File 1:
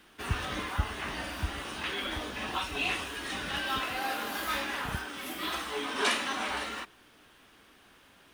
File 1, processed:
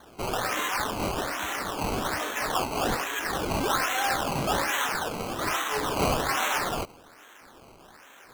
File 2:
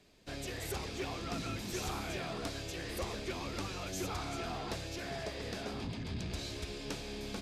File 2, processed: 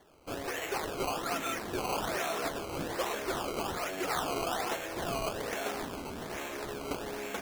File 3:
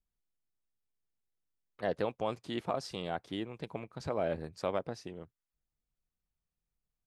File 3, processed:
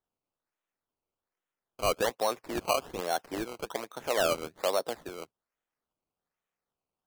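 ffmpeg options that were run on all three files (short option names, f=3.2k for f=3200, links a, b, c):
-filter_complex "[0:a]asplit=2[a][b];[b]highpass=f=720:p=1,volume=17dB,asoftclip=type=tanh:threshold=-14.5dB[c];[a][c]amix=inputs=2:normalize=0,lowpass=f=4.9k:p=1,volume=-6dB,acrossover=split=230 3300:gain=0.224 1 0.0631[d][e][f];[d][e][f]amix=inputs=3:normalize=0,acrusher=samples=17:mix=1:aa=0.000001:lfo=1:lforange=17:lforate=1.2"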